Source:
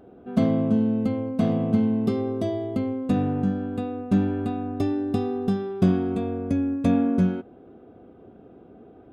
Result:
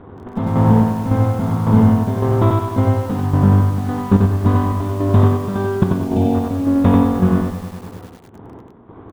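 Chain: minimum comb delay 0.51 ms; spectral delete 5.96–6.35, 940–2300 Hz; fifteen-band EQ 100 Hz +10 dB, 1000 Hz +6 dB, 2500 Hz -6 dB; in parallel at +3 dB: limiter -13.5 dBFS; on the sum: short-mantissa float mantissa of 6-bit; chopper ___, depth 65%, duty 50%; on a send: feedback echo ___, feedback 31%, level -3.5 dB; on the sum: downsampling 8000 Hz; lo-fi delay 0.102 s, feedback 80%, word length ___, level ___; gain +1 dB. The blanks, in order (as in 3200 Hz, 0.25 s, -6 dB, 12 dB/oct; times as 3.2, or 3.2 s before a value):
1.8 Hz, 90 ms, 6-bit, -11 dB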